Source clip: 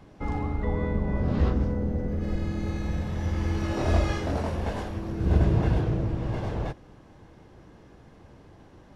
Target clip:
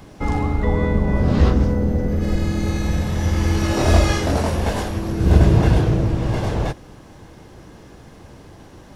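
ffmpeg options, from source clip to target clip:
-af "highshelf=f=5.1k:g=12,volume=8.5dB"

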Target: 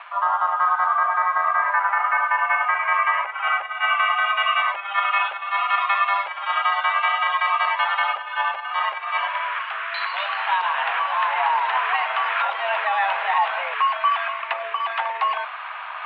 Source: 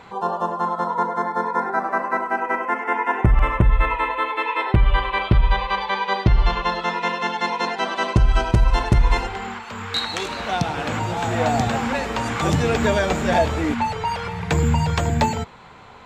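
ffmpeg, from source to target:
-af "alimiter=limit=-15dB:level=0:latency=1:release=20,areverse,acompressor=mode=upward:threshold=-25dB:ratio=2.5,areverse,aeval=exprs='sgn(val(0))*max(abs(val(0))-0.00299,0)':c=same,highpass=f=540:t=q:w=0.5412,highpass=f=540:t=q:w=1.307,lowpass=f=2.9k:t=q:w=0.5176,lowpass=f=2.9k:t=q:w=0.7071,lowpass=f=2.9k:t=q:w=1.932,afreqshift=210,volume=5.5dB"

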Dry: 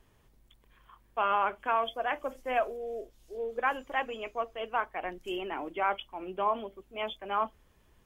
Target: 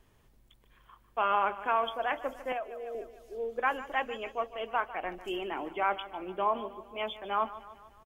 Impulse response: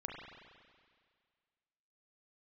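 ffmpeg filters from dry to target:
-filter_complex "[0:a]aecho=1:1:149|298|447|596|745:0.168|0.0907|0.049|0.0264|0.0143,asettb=1/sr,asplit=3[a][b][c];[a]atrim=end=2.524[d];[b]atrim=start=2.52:end=2.95,asetpts=PTS-STARTPTS,afade=t=in:d=0.004:c=qsin,afade=t=out:st=0.426:d=0.004:c=qsin,acrossover=split=350|770[e][f][g];[e]acompressor=threshold=-57dB:ratio=4[h];[f]acompressor=threshold=-38dB:ratio=4[i];[g]acompressor=threshold=-42dB:ratio=4[j];[h][i][j]amix=inputs=3:normalize=0[k];[c]atrim=start=2.946[l];[d][k]acrossfade=d=0.004:c1=hsin:c2=qsin[m];[m][l]acrossfade=d=0.004:c1=qsin:c2=hsin"

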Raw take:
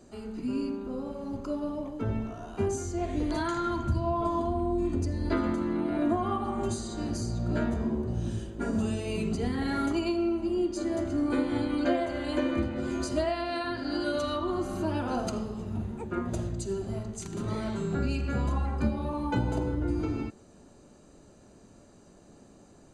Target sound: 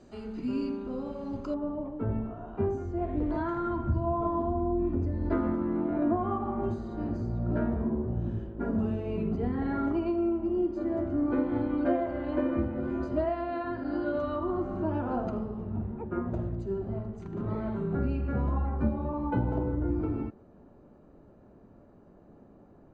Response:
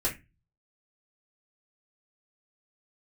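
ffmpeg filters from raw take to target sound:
-af "asetnsamples=n=441:p=0,asendcmd='1.54 lowpass f 1300',lowpass=4.7k"

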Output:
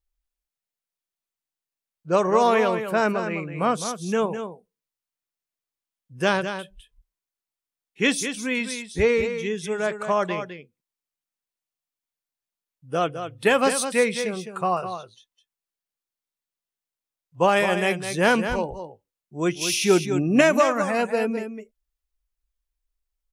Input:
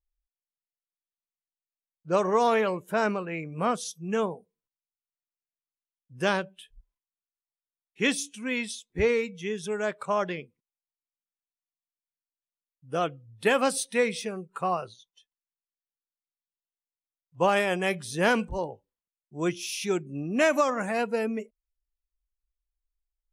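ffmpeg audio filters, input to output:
-filter_complex "[0:a]asettb=1/sr,asplit=3[a][b][c];[a]atrim=end=19.614[d];[b]atrim=start=19.61:end=20.41,asetpts=PTS-STARTPTS,afade=t=in:d=0.004:c=qsin,afade=t=out:st=0.796:d=0.004:c=qsin,acontrast=36[e];[c]atrim=start=20.406[f];[d][e]acrossfade=d=0.004:c1=hsin:c2=qsin[g];[g][f]acrossfade=d=0.004:c1=qsin:c2=hsin,aecho=1:1:208:0.355,volume=4dB"

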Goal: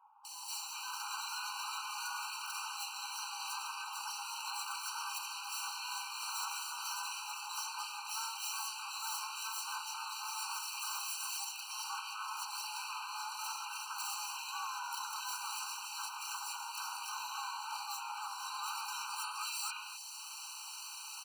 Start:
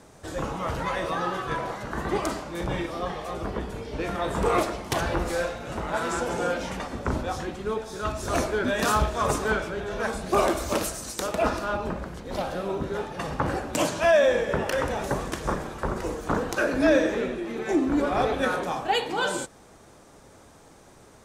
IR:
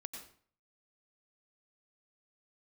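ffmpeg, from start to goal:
-filter_complex "[0:a]highshelf=f=3k:t=q:w=3:g=12.5,acompressor=threshold=-35dB:ratio=6,asoftclip=type=tanh:threshold=-18dB,asplit=4[a][b][c][d];[b]asetrate=22050,aresample=44100,atempo=2,volume=-1dB[e];[c]asetrate=29433,aresample=44100,atempo=1.49831,volume=-6dB[f];[d]asetrate=88200,aresample=44100,atempo=0.5,volume=-8dB[g];[a][e][f][g]amix=inputs=4:normalize=0,aeval=exprs='0.0299*(abs(mod(val(0)/0.0299+3,4)-2)-1)':c=same,afreqshift=470,acrossover=split=800|3100[h][i][j];[j]adelay=250[k];[i]adelay=510[l];[h][l][k]amix=inputs=3:normalize=0,afftfilt=real='re*eq(mod(floor(b*sr/1024/780),2),1)':imag='im*eq(mod(floor(b*sr/1024/780),2),1)':win_size=1024:overlap=0.75"

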